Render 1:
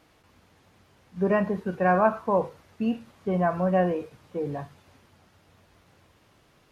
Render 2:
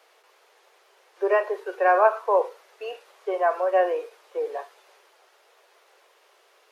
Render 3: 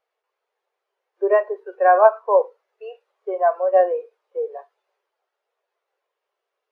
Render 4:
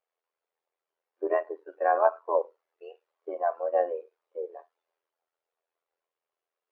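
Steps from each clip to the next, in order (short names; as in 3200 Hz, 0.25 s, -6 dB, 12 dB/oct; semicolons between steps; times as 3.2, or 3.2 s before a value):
steep high-pass 380 Hz 72 dB/oct; gain +3.5 dB
spectral expander 1.5:1; gain +5 dB
AM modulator 83 Hz, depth 60%; gain -6.5 dB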